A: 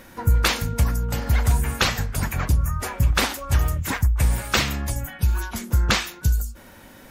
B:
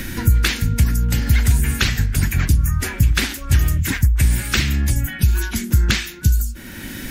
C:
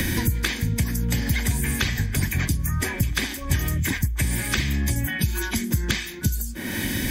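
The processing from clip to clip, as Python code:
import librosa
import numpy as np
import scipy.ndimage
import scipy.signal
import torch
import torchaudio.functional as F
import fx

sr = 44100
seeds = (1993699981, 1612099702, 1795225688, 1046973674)

y1 = fx.band_shelf(x, sr, hz=760.0, db=-13.0, octaves=1.7)
y1 = fx.band_squash(y1, sr, depth_pct=70)
y1 = y1 * 10.0 ** (4.5 / 20.0)
y2 = fx.notch_comb(y1, sr, f0_hz=1400.0)
y2 = fx.band_squash(y2, sr, depth_pct=100)
y2 = y2 * 10.0 ** (-2.0 / 20.0)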